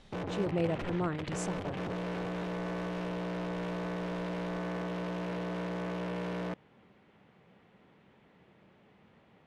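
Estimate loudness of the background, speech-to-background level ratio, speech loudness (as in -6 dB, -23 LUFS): -37.0 LUFS, 1.0 dB, -36.0 LUFS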